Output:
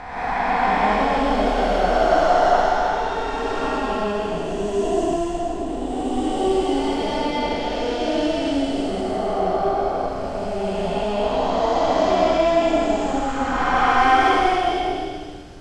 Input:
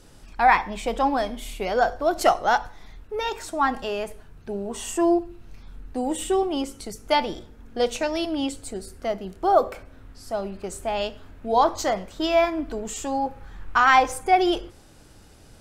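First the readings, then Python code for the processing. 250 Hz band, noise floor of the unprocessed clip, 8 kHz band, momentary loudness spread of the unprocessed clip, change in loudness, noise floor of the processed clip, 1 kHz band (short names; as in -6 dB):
+5.0 dB, -50 dBFS, -3.5 dB, 15 LU, +3.0 dB, -28 dBFS, +3.5 dB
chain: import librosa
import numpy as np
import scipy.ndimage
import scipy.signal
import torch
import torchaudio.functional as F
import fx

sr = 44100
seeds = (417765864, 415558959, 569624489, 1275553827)

y = fx.spec_blur(x, sr, span_ms=807.0)
y = fx.air_absorb(y, sr, metres=82.0)
y = fx.rev_gated(y, sr, seeds[0], gate_ms=220, shape='rising', drr_db=-8.0)
y = y * librosa.db_to_amplitude(3.5)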